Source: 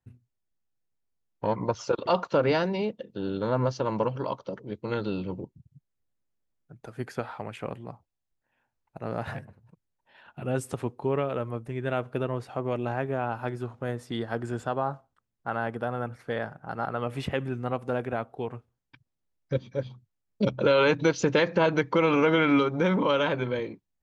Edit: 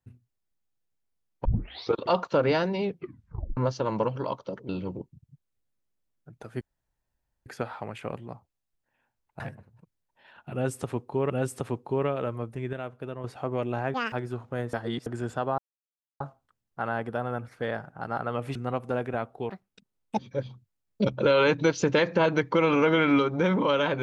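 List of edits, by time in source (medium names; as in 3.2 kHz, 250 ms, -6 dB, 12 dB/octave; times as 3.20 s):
1.45 s: tape start 0.50 s
2.82 s: tape stop 0.75 s
4.69–5.12 s: delete
7.04 s: insert room tone 0.85 s
8.98–9.30 s: delete
10.43–11.20 s: loop, 2 plays
11.86–12.37 s: gain -7.5 dB
13.07–13.42 s: speed 192%
14.03–14.36 s: reverse
14.88 s: insert silence 0.62 s
17.23–17.54 s: delete
18.48–19.59 s: speed 160%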